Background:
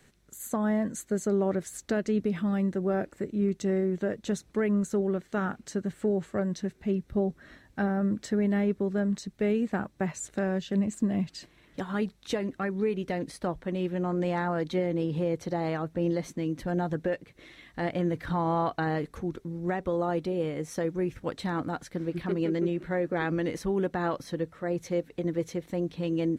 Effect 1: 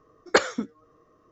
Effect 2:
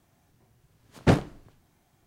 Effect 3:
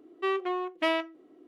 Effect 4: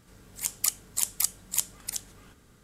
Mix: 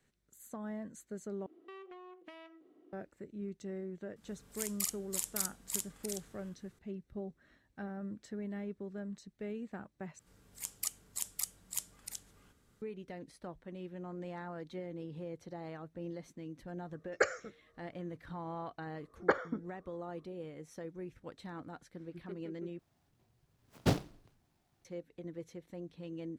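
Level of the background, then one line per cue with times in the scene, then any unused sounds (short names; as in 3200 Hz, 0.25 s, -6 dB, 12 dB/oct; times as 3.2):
background -15 dB
1.46 replace with 3 -7.5 dB + compressor 10:1, threshold -40 dBFS
4.16 add 4 -10.5 dB + doubler 47 ms -3 dB
10.19 replace with 4 -11 dB
16.86 add 1 -8.5 dB + fixed phaser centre 960 Hz, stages 6
18.94 add 1 -8.5 dB + polynomial smoothing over 41 samples
22.79 replace with 2 -9.5 dB + noise-modulated delay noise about 3200 Hz, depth 0.075 ms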